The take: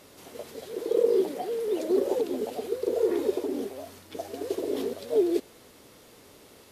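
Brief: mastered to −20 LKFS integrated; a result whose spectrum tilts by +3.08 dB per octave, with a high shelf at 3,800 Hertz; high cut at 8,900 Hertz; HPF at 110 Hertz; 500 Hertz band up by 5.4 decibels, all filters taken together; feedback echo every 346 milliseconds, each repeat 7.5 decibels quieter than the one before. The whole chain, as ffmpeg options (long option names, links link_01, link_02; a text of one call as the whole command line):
ffmpeg -i in.wav -af "highpass=110,lowpass=8900,equalizer=frequency=500:width_type=o:gain=6.5,highshelf=frequency=3800:gain=5.5,aecho=1:1:346|692|1038|1384|1730:0.422|0.177|0.0744|0.0312|0.0131,volume=3dB" out.wav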